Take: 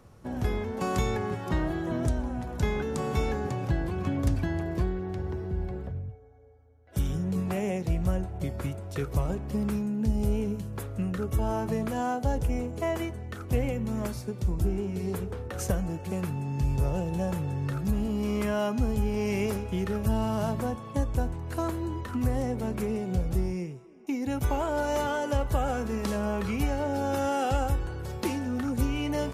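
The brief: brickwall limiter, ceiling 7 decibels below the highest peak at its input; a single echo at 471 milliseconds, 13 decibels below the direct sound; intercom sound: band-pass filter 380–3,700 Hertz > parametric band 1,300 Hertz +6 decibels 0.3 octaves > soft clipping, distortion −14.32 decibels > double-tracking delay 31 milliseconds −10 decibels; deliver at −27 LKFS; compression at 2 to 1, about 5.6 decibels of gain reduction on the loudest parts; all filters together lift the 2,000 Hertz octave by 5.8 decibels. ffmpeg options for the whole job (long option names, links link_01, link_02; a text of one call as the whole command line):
ffmpeg -i in.wav -filter_complex "[0:a]equalizer=frequency=2000:width_type=o:gain=6.5,acompressor=threshold=-31dB:ratio=2,alimiter=level_in=1dB:limit=-24dB:level=0:latency=1,volume=-1dB,highpass=380,lowpass=3700,equalizer=frequency=1300:width_type=o:width=0.3:gain=6,aecho=1:1:471:0.224,asoftclip=threshold=-32dB,asplit=2[link_01][link_02];[link_02]adelay=31,volume=-10dB[link_03];[link_01][link_03]amix=inputs=2:normalize=0,volume=13dB" out.wav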